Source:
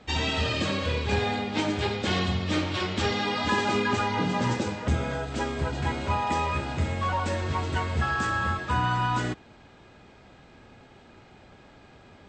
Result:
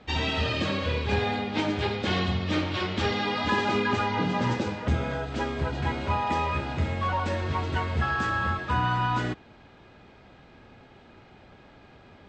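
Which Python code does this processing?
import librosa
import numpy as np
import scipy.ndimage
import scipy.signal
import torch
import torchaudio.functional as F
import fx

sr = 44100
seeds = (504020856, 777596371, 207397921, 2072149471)

y = scipy.signal.sosfilt(scipy.signal.butter(2, 4900.0, 'lowpass', fs=sr, output='sos'), x)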